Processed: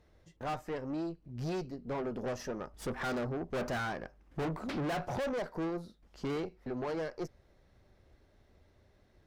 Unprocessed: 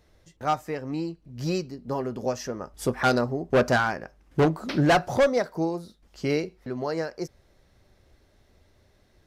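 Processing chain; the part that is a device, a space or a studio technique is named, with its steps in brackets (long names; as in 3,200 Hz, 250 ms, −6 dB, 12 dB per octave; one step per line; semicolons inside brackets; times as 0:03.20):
tube preamp driven hard (tube saturation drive 32 dB, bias 0.65; high-shelf EQ 3,700 Hz −9 dB)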